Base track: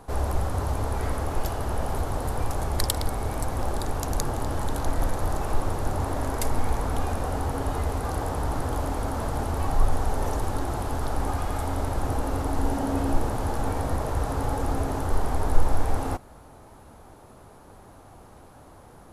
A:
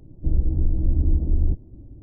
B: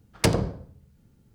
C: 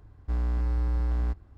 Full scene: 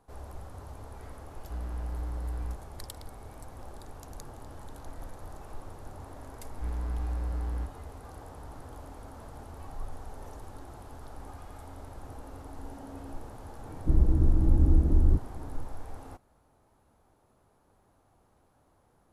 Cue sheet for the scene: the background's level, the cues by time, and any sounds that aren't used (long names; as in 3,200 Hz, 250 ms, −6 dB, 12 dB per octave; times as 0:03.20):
base track −17.5 dB
0:01.22: mix in C −8.5 dB
0:06.33: mix in C −6 dB
0:13.63: mix in A −2 dB + parametric band 430 Hz +4 dB 2.5 octaves
not used: B